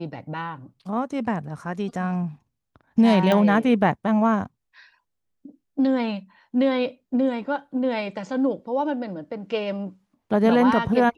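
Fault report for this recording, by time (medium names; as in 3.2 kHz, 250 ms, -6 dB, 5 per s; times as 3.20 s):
3.32 s: pop -10 dBFS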